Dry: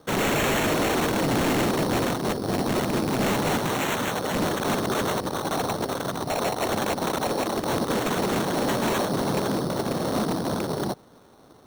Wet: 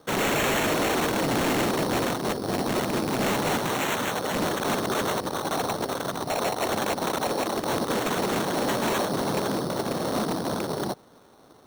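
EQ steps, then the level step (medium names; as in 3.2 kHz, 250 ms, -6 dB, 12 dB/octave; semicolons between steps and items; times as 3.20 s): bass shelf 230 Hz -5 dB; 0.0 dB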